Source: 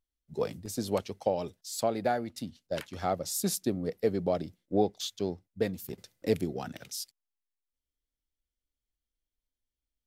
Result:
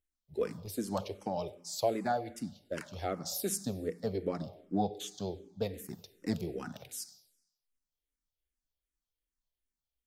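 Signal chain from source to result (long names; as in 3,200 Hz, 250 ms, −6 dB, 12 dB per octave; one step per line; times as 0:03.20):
four-comb reverb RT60 0.87 s, combs from 31 ms, DRR 14.5 dB
frequency shifter mixed with the dry sound −2.6 Hz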